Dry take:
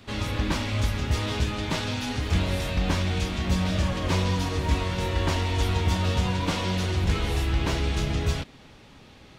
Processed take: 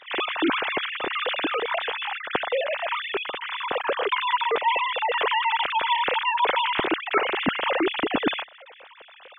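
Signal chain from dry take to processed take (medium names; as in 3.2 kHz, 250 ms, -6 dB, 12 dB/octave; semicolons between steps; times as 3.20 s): formants replaced by sine waves; 1.58–3.90 s: distance through air 190 m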